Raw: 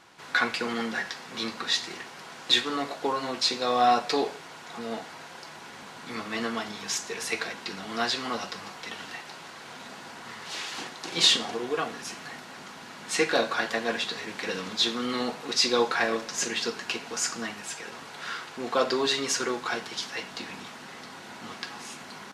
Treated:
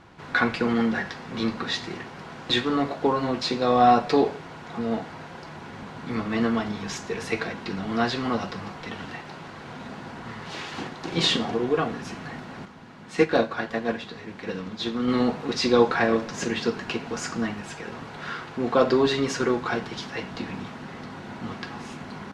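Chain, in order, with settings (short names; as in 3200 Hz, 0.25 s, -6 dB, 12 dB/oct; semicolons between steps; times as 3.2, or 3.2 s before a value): RIAA curve playback; 12.65–15.08 upward expander 1.5:1, over -32 dBFS; gain +3 dB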